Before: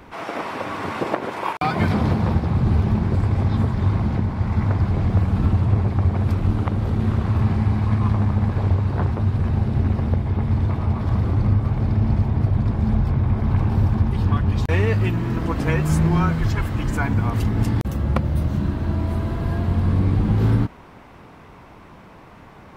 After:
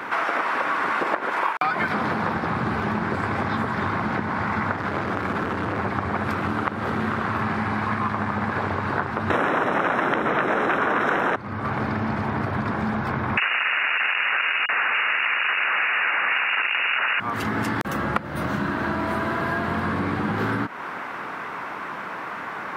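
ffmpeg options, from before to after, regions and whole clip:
-filter_complex "[0:a]asettb=1/sr,asplit=3[a][b][c];[a]atrim=end=4.764[d];[b]atrim=start=4.76:end=5.79,asetpts=PTS-STARTPTS,afade=t=in:d=0.004:c=qsin,afade=t=out:st=1.026:d=0.004:c=qsin,volume=21dB,asoftclip=hard,volume=-21dB,asplit=2[e][f];[f]adelay=36,volume=-11.5dB[g];[e][g]amix=inputs=2:normalize=0,atrim=end_sample=45423[h];[c]atrim=start=5.786[i];[d][h]acrossfade=d=0.004:c1=hsin:c2=qsin[j];[j][i]acrossfade=d=0.004:c1=qsin:c2=hsin,asettb=1/sr,asplit=3[k][l][m];[k]atrim=end=9.304[n];[l]atrim=start=9.3:end=11.36,asetpts=PTS-STARTPTS,afade=t=in:d=0.004:c=qsin,afade=t=out:st=2.056:d=0.004:c=qsin,aeval=exprs='0.376*sin(PI/2*7.08*val(0)/0.376)':c=same,asuperstop=centerf=4600:order=8:qfactor=4[o];[m]atrim=start=11.356[p];[n][o]acrossfade=d=0.004:c1=hsin:c2=qsin[q];[q][p]acrossfade=d=0.004:c1=qsin:c2=hsin,asettb=1/sr,asplit=3[r][s][t];[r]atrim=end=13.374[u];[s]atrim=start=13.37:end=17.2,asetpts=PTS-STARTPTS,afade=t=in:d=0.004:c=qsin,afade=t=out:st=3.826:d=0.004:c=qsin,equalizer=f=280:w=0.32:g=7,aeval=exprs='(mod(6.31*val(0)+1,2)-1)/6.31':c=same,lowpass=f=2.5k:t=q:w=0.5098,lowpass=f=2.5k:t=q:w=0.6013,lowpass=f=2.5k:t=q:w=0.9,lowpass=f=2.5k:t=q:w=2.563,afreqshift=-2900[v];[t]atrim=start=17.196[w];[u][v]acrossfade=d=0.004:c1=hsin:c2=qsin[x];[x][w]acrossfade=d=0.004:c1=qsin:c2=hsin,highpass=230,equalizer=f=1.5k:t=o:w=1.4:g=13.5,acompressor=threshold=-29dB:ratio=5,volume=7dB"

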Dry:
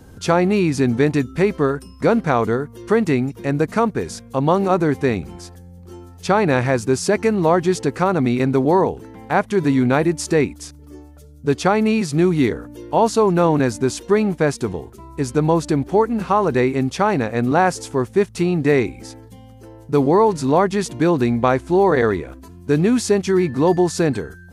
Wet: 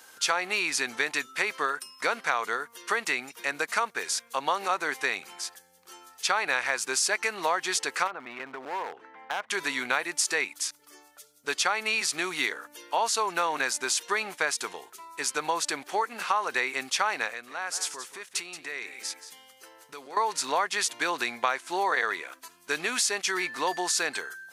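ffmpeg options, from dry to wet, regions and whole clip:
-filter_complex "[0:a]asettb=1/sr,asplit=3[a][b][c];[a]atrim=end=8.074[d];[b]atrim=start=8.07:end=9.5,asetpts=PTS-STARTPTS,afade=t=in:d=0.004:c=qsin,afade=t=out:st=1.426:d=0.004:c=qsin,lowpass=1.7k,acompressor=threshold=-19dB:ratio=20:attack=3.2:release=140:knee=1:detection=peak,aeval=exprs='clip(val(0),-1,0.0794)':c=same[e];[c]atrim=start=9.496[f];[d][e]acrossfade=d=0.004:c1=hsin:c2=qsin[g];[g][f]acrossfade=d=0.004:c1=qsin:c2=hsin,asettb=1/sr,asplit=3[h][i][j];[h]atrim=end=17.304[k];[i]atrim=start=17.3:end=20.17,asetpts=PTS-STARTPTS,afade=t=in:d=0.004:c=qsin,afade=t=out:st=2.866:d=0.004:c=qsin,equalizer=f=810:t=o:w=0.37:g=-4,acompressor=threshold=-28dB:ratio=4:attack=3.2:release=140:knee=1:detection=peak,aecho=1:1:178:0.251,atrim=end_sample=126567[l];[j]atrim=start=20.166[m];[k][l]acrossfade=d=0.004:c1=hsin:c2=qsin[n];[n][m]acrossfade=d=0.004:c1=qsin:c2=hsin,highpass=1.4k,acompressor=threshold=-29dB:ratio=3,volume=5.5dB"

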